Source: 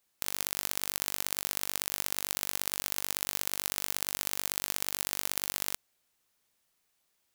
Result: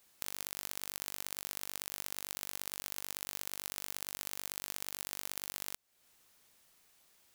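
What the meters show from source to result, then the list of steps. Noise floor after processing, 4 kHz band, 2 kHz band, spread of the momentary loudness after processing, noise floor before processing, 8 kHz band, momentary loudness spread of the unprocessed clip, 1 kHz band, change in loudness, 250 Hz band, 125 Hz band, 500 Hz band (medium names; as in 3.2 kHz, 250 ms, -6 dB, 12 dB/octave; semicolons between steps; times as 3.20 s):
-71 dBFS, -8.0 dB, -8.0 dB, 1 LU, -76 dBFS, -8.0 dB, 1 LU, -8.0 dB, -8.0 dB, -8.0 dB, -8.0 dB, -8.0 dB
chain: compression 4:1, threshold -45 dBFS, peak gain reduction 17 dB; trim +8.5 dB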